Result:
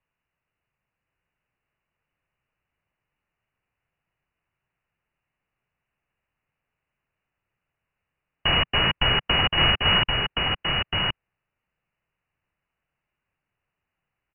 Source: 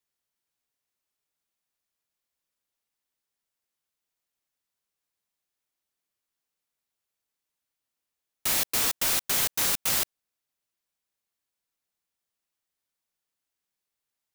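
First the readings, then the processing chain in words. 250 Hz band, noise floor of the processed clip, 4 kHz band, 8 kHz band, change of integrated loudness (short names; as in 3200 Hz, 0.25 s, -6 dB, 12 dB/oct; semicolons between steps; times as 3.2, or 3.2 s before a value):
+11.5 dB, -85 dBFS, +13.0 dB, under -40 dB, +3.0 dB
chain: tracing distortion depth 0.084 ms; inverted band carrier 2900 Hz; resonant low shelf 190 Hz +6.5 dB, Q 1.5; echo 1.072 s -3.5 dB; gain +8.5 dB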